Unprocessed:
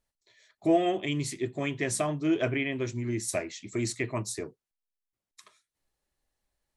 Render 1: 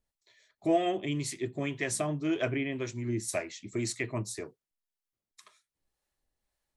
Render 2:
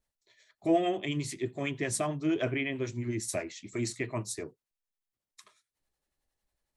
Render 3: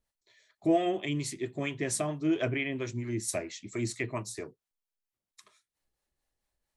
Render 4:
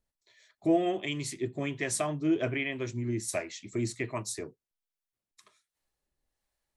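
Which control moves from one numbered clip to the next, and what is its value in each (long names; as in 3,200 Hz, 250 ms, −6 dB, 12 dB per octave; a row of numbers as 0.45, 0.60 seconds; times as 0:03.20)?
two-band tremolo in antiphase, speed: 1.9, 11, 4.4, 1.3 Hertz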